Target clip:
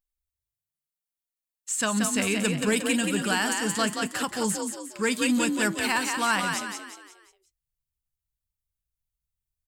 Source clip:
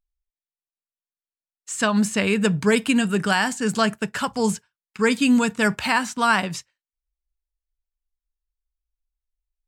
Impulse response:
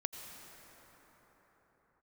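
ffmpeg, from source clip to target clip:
-filter_complex "[0:a]equalizer=f=5500:t=o:w=0.77:g=-3.5,asplit=6[s0][s1][s2][s3][s4][s5];[s1]adelay=179,afreqshift=43,volume=0.531[s6];[s2]adelay=358,afreqshift=86,volume=0.224[s7];[s3]adelay=537,afreqshift=129,volume=0.0933[s8];[s4]adelay=716,afreqshift=172,volume=0.0394[s9];[s5]adelay=895,afreqshift=215,volume=0.0166[s10];[s0][s6][s7][s8][s9][s10]amix=inputs=6:normalize=0,asplit=2[s11][s12];[s12]volume=7.94,asoftclip=hard,volume=0.126,volume=0.335[s13];[s11][s13]amix=inputs=2:normalize=0,highshelf=f=3900:g=12,volume=0.355"

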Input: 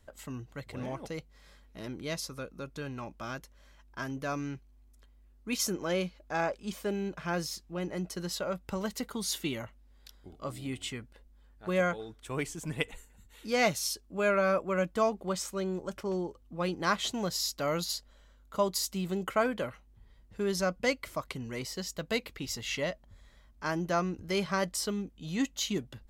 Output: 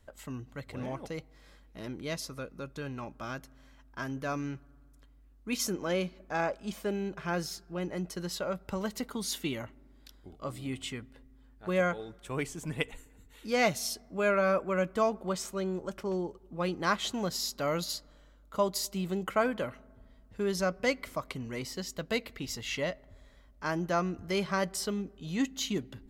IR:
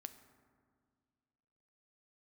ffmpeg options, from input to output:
-filter_complex "[0:a]asplit=2[s0][s1];[1:a]atrim=start_sample=2205,lowpass=4200[s2];[s1][s2]afir=irnorm=-1:irlink=0,volume=0.422[s3];[s0][s3]amix=inputs=2:normalize=0,volume=0.841"

